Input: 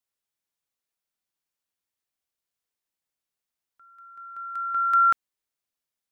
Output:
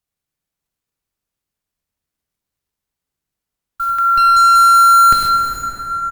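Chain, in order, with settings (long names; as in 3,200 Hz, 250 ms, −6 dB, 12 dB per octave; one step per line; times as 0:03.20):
converter with a step at zero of −42.5 dBFS
low-shelf EQ 100 Hz +5 dB
fuzz pedal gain 42 dB, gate −48 dBFS
on a send: single-tap delay 102 ms −13 dB
on the sum: noise gate −30 dBFS, range −53 dB
low-shelf EQ 260 Hz +10 dB
dense smooth reverb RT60 4.9 s, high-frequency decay 0.4×, DRR 1 dB
in parallel at −2 dB: brickwall limiter −17 dBFS, peak gain reduction 11.5 dB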